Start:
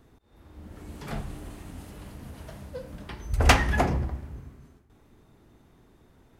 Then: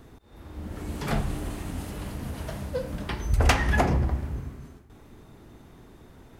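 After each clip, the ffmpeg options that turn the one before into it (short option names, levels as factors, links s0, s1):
-af "acompressor=threshold=0.0398:ratio=3,volume=2.51"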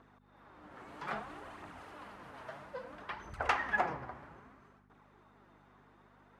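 -af "flanger=delay=0:depth=8.2:regen=39:speed=0.61:shape=triangular,aeval=exprs='val(0)+0.00708*(sin(2*PI*50*n/s)+sin(2*PI*2*50*n/s)/2+sin(2*PI*3*50*n/s)/3+sin(2*PI*4*50*n/s)/4+sin(2*PI*5*50*n/s)/5)':c=same,bandpass=f=1200:t=q:w=1.3:csg=0,volume=1.12"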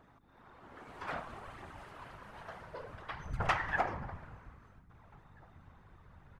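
-filter_complex "[0:a]asplit=2[s0][s1];[s1]adelay=1633,volume=0.0355,highshelf=f=4000:g=-36.7[s2];[s0][s2]amix=inputs=2:normalize=0,asubboost=boost=10.5:cutoff=73,afftfilt=real='hypot(re,im)*cos(2*PI*random(0))':imag='hypot(re,im)*sin(2*PI*random(1))':win_size=512:overlap=0.75,volume=2"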